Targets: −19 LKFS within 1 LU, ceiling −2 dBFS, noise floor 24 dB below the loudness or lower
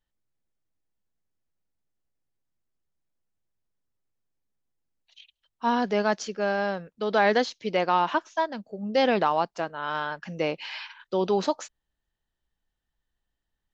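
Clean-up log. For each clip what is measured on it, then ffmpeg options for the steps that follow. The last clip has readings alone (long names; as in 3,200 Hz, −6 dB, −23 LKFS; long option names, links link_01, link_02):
integrated loudness −26.5 LKFS; sample peak −8.5 dBFS; target loudness −19.0 LKFS
→ -af "volume=7.5dB,alimiter=limit=-2dB:level=0:latency=1"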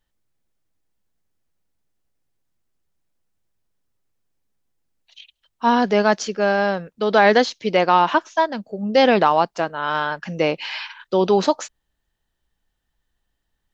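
integrated loudness −19.0 LKFS; sample peak −2.0 dBFS; background noise floor −76 dBFS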